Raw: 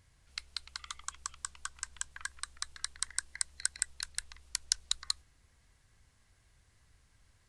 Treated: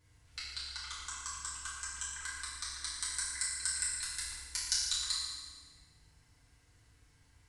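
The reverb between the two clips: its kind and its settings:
feedback delay network reverb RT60 1.5 s, low-frequency decay 1.35×, high-frequency decay 0.9×, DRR −9.5 dB
level −8 dB

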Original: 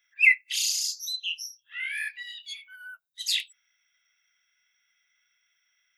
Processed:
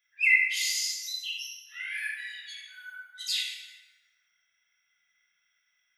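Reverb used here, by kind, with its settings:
dense smooth reverb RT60 1.8 s, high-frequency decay 0.5×, DRR −4 dB
level −6.5 dB

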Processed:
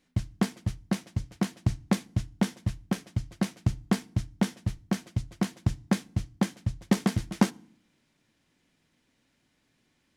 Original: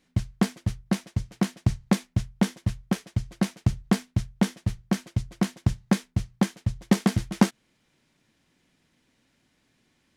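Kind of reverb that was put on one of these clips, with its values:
feedback delay network reverb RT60 0.54 s, low-frequency decay 1.5×, high-frequency decay 0.9×, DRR 20 dB
level −3 dB

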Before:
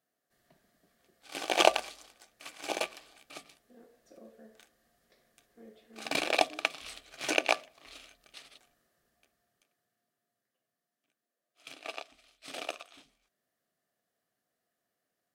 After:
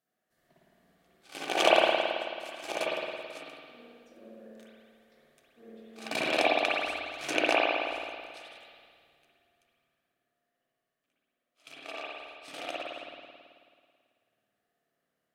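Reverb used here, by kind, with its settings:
spring reverb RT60 2 s, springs 54 ms, chirp 55 ms, DRR −6.5 dB
level −3.5 dB

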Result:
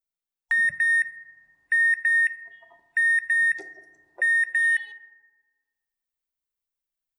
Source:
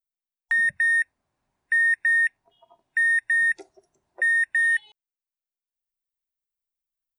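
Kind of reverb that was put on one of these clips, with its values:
feedback delay network reverb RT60 1.5 s, low-frequency decay 1.2×, high-frequency decay 0.3×, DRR 10.5 dB

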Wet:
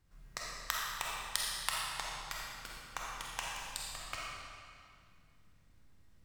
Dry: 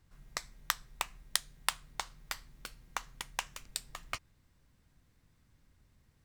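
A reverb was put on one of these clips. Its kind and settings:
comb and all-pass reverb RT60 2.2 s, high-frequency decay 0.9×, pre-delay 5 ms, DRR −4.5 dB
level −5 dB

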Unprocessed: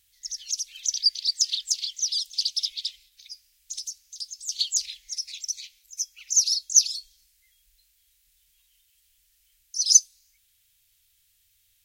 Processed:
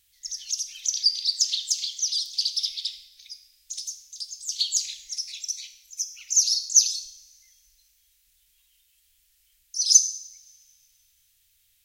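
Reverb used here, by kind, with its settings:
coupled-rooms reverb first 0.69 s, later 2.2 s, from −20 dB, DRR 8 dB

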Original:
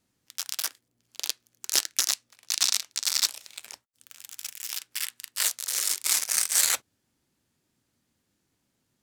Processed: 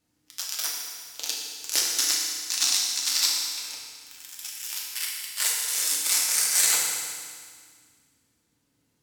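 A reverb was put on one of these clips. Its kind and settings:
feedback delay network reverb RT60 1.9 s, low-frequency decay 1.3×, high-frequency decay 0.95×, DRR −3.5 dB
level −2.5 dB

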